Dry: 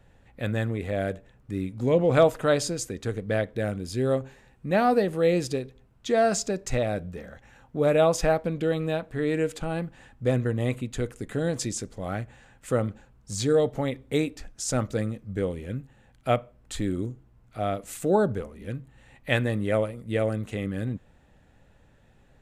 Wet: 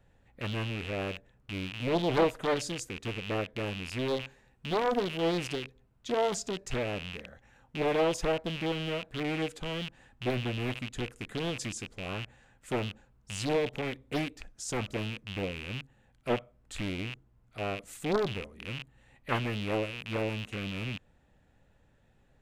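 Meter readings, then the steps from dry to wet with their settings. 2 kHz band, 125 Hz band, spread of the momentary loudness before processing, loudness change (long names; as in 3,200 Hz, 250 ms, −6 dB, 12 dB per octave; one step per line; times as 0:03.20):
−2.5 dB, −7.5 dB, 14 LU, −6.5 dB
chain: loose part that buzzes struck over −40 dBFS, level −20 dBFS
highs frequency-modulated by the lows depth 0.87 ms
level −7 dB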